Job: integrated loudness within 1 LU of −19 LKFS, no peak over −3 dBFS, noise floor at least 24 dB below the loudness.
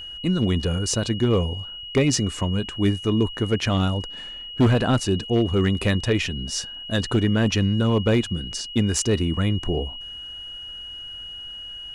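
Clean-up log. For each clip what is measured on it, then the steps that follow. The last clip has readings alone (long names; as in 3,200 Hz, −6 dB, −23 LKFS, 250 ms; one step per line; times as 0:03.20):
share of clipped samples 0.6%; peaks flattened at −12.5 dBFS; interfering tone 2,900 Hz; level of the tone −34 dBFS; integrated loudness −23.0 LKFS; sample peak −12.5 dBFS; target loudness −19.0 LKFS
→ clipped peaks rebuilt −12.5 dBFS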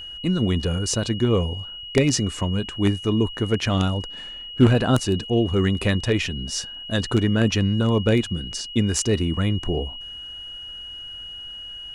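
share of clipped samples 0.0%; interfering tone 2,900 Hz; level of the tone −34 dBFS
→ notch filter 2,900 Hz, Q 30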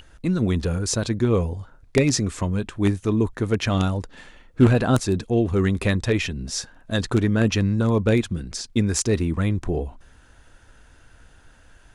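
interfering tone none found; integrated loudness −22.5 LKFS; sample peak −3.5 dBFS; target loudness −19.0 LKFS
→ level +3.5 dB
brickwall limiter −3 dBFS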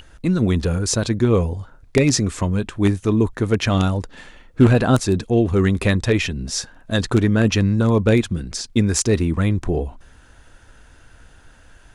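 integrated loudness −19.5 LKFS; sample peak −3.0 dBFS; background noise floor −49 dBFS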